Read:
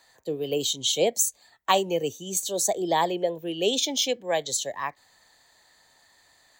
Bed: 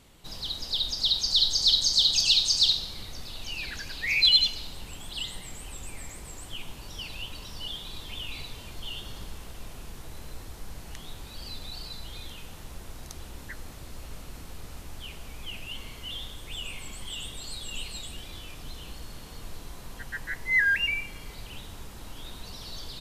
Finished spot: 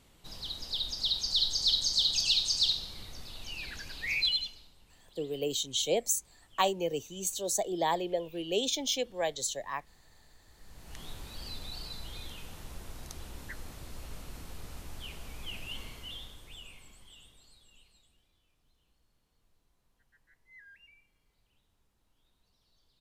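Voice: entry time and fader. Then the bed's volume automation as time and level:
4.90 s, -6.0 dB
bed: 4.14 s -5.5 dB
4.74 s -21 dB
10.43 s -21 dB
11.02 s -2.5 dB
15.81 s -2.5 dB
18.36 s -32.5 dB

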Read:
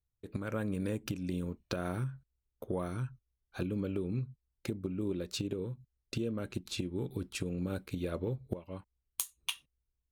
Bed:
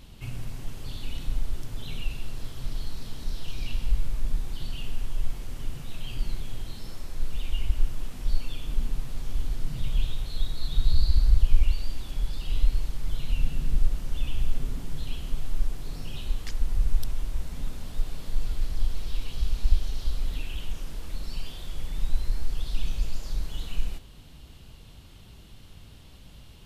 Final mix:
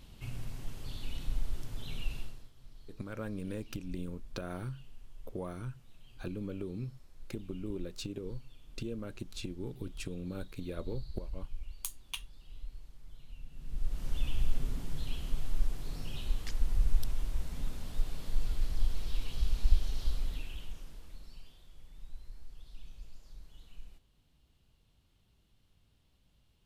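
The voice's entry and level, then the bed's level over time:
2.65 s, -4.5 dB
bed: 2.20 s -5.5 dB
2.51 s -22 dB
13.49 s -22 dB
14.06 s -4 dB
20.09 s -4 dB
21.68 s -21 dB

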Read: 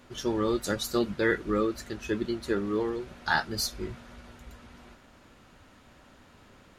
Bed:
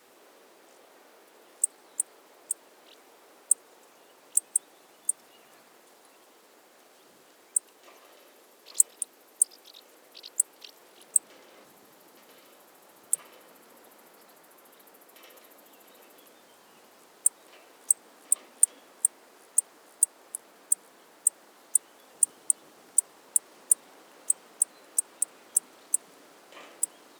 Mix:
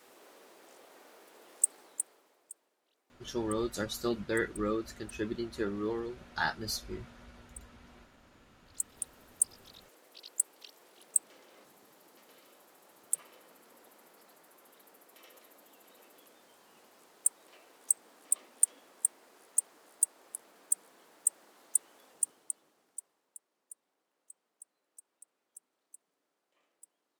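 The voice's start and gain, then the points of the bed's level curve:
3.10 s, -5.5 dB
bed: 1.80 s -1 dB
2.79 s -23.5 dB
8.60 s -23.5 dB
9.01 s -5 dB
22.03 s -5 dB
23.47 s -28.5 dB

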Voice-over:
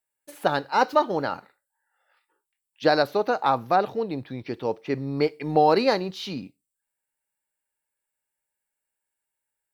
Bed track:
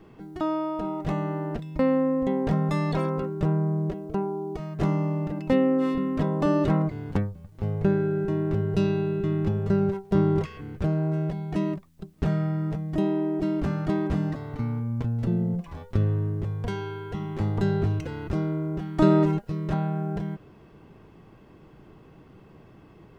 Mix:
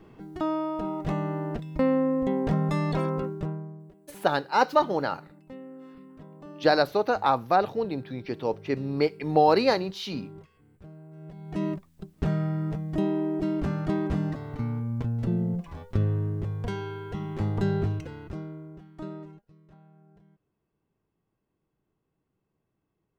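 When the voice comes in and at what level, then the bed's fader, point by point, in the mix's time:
3.80 s, -1.0 dB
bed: 3.27 s -1 dB
3.89 s -22 dB
11.10 s -22 dB
11.64 s -1.5 dB
17.79 s -1.5 dB
19.67 s -28.5 dB

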